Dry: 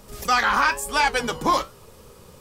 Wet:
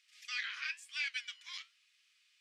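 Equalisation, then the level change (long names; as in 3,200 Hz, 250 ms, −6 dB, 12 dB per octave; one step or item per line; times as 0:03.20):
Butterworth high-pass 2,100 Hz 36 dB per octave
head-to-tape spacing loss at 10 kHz 27 dB
−2.5 dB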